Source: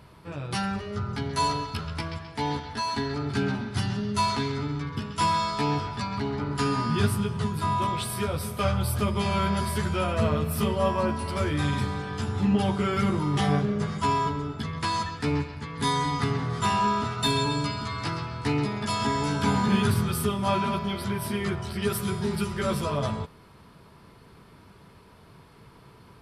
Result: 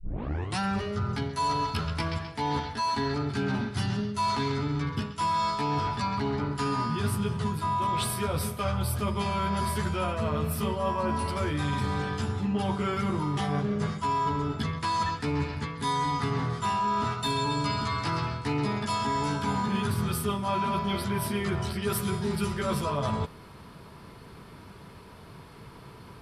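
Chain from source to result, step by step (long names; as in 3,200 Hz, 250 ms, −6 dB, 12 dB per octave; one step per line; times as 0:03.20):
turntable start at the beginning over 0.59 s
dynamic equaliser 1,000 Hz, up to +4 dB, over −38 dBFS
reversed playback
downward compressor, threshold −30 dBFS, peak gain reduction 12.5 dB
reversed playback
level +4.5 dB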